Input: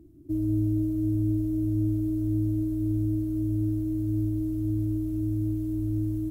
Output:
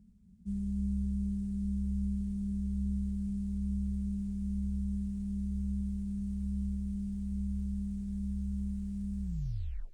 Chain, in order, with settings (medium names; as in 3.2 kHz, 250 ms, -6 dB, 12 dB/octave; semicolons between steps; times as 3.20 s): tape stop on the ending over 0.45 s; peaking EQ 1.8 kHz -11.5 dB 0.22 oct; on a send: thinning echo 102 ms, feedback 84%, high-pass 420 Hz, level -20 dB; on the sum: wide varispeed 0.635×; sliding maximum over 3 samples; trim -7.5 dB